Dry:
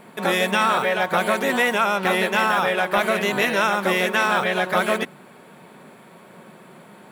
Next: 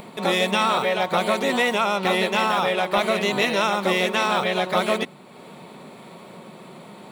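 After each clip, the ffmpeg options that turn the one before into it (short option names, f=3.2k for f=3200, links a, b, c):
-af "equalizer=f=1.6k:t=o:w=0.33:g=-10,equalizer=f=4k:t=o:w=0.33:g=6,equalizer=f=12.5k:t=o:w=0.33:g=-11,acompressor=mode=upward:threshold=-35dB:ratio=2.5"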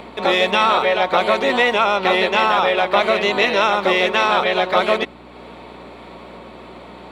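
-filter_complex "[0:a]aeval=exprs='val(0)+0.0126*(sin(2*PI*60*n/s)+sin(2*PI*2*60*n/s)/2+sin(2*PI*3*60*n/s)/3+sin(2*PI*4*60*n/s)/4+sin(2*PI*5*60*n/s)/5)':c=same,acrossover=split=240 5100:gain=0.141 1 0.141[a][b][c];[a][b][c]amix=inputs=3:normalize=0,volume=5.5dB"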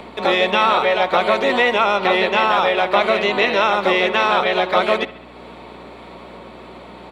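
-filter_complex "[0:a]acrossover=split=140|4300[a][b][c];[b]aecho=1:1:68|136|204|272|340:0.133|0.0787|0.0464|0.0274|0.0162[d];[c]alimiter=level_in=6dB:limit=-24dB:level=0:latency=1:release=230,volume=-6dB[e];[a][d][e]amix=inputs=3:normalize=0"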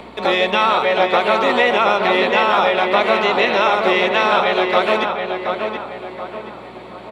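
-filter_complex "[0:a]asplit=2[a][b];[b]adelay=726,lowpass=f=2.6k:p=1,volume=-5dB,asplit=2[c][d];[d]adelay=726,lowpass=f=2.6k:p=1,volume=0.42,asplit=2[e][f];[f]adelay=726,lowpass=f=2.6k:p=1,volume=0.42,asplit=2[g][h];[h]adelay=726,lowpass=f=2.6k:p=1,volume=0.42,asplit=2[i][j];[j]adelay=726,lowpass=f=2.6k:p=1,volume=0.42[k];[a][c][e][g][i][k]amix=inputs=6:normalize=0"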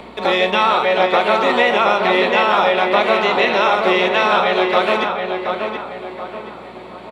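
-filter_complex "[0:a]asplit=2[a][b];[b]adelay=38,volume=-11dB[c];[a][c]amix=inputs=2:normalize=0"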